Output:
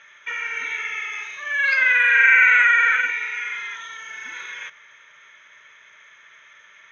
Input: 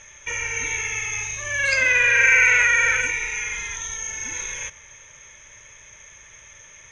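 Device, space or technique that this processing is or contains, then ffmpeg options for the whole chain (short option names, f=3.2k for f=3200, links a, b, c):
kitchen radio: -filter_complex "[0:a]highpass=f=770:p=1,highpass=170,equalizer=f=310:t=q:w=4:g=-5,equalizer=f=530:t=q:w=4:g=-9,equalizer=f=850:t=q:w=4:g=-7,equalizer=f=1.4k:t=q:w=4:g=6,equalizer=f=2.6k:t=q:w=4:g=-6,lowpass=f=3.6k:w=0.5412,lowpass=f=3.6k:w=1.3066,asettb=1/sr,asplit=3[a][b][c];[a]atrim=end=0.954[d];[b]atrim=start=0.95:end=1.49,asetpts=PTS-STARTPTS,afade=t=in:d=0.004:c=qsin,afade=t=out:st=0.536:d=0.004:c=qsin,equalizer=f=110:t=o:w=0.77:g=-9[e];[c]atrim=start=1.486[f];[d][e]acrossfade=d=0.004:c1=hsin:c2=qsin[g];[g][f]acrossfade=d=0.004:c1=qsin:c2=hsin,volume=3dB"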